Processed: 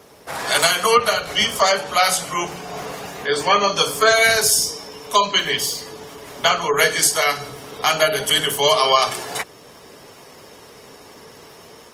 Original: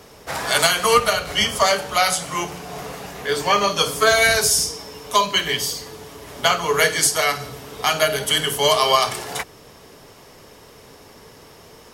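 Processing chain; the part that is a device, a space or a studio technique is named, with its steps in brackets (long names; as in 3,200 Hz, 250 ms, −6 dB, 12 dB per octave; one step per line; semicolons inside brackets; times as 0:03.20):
noise-suppressed video call (high-pass filter 160 Hz 6 dB per octave; gate on every frequency bin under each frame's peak −30 dB strong; automatic gain control gain up to 3 dB; Opus 24 kbit/s 48,000 Hz)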